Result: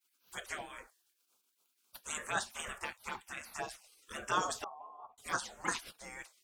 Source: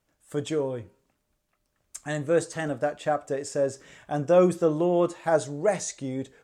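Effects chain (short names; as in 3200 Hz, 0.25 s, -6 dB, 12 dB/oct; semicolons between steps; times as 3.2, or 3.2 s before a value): envelope phaser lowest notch 310 Hz, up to 2300 Hz, full sweep at -18.5 dBFS; spectral gate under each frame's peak -25 dB weak; 4.64–5.18 vocal tract filter a; gain +9.5 dB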